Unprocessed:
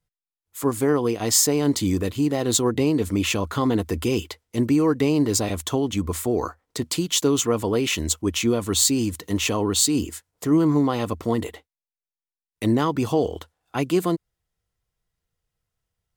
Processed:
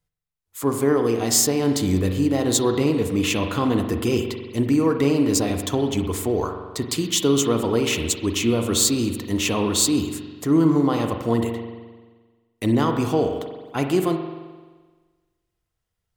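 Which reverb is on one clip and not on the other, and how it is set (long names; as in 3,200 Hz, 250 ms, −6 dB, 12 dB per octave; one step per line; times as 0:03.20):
spring reverb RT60 1.4 s, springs 43 ms, chirp 25 ms, DRR 5 dB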